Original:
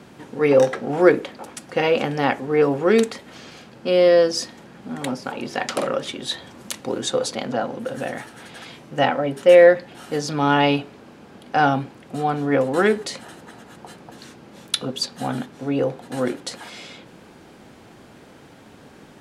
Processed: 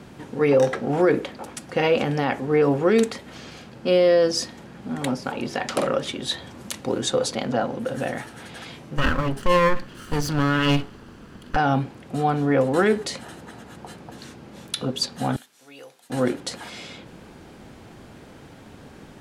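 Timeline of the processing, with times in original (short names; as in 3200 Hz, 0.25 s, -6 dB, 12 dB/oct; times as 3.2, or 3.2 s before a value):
8.97–11.56 minimum comb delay 0.65 ms
15.36–16.1 differentiator
whole clip: low shelf 93 Hz +12 dB; limiter -9.5 dBFS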